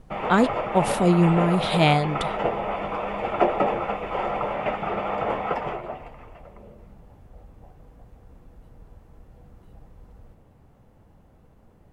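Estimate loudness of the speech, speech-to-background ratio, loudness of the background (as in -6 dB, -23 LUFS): -21.5 LUFS, 5.5 dB, -27.0 LUFS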